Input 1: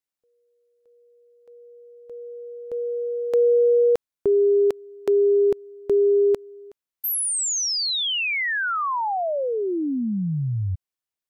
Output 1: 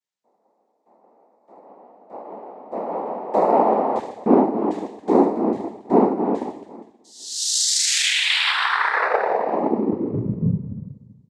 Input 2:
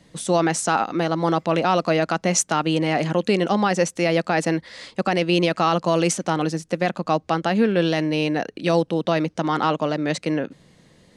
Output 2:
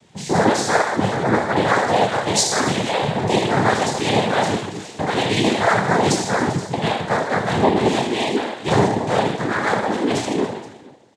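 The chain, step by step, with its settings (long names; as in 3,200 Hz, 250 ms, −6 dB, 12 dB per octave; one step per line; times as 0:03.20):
reverb reduction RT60 2 s
on a send: reverse bouncing-ball delay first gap 30 ms, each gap 1.6×, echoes 5
on the sum: coupled-rooms reverb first 0.71 s, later 1.9 s, DRR −0.5 dB
cochlear-implant simulation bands 6
level −1 dB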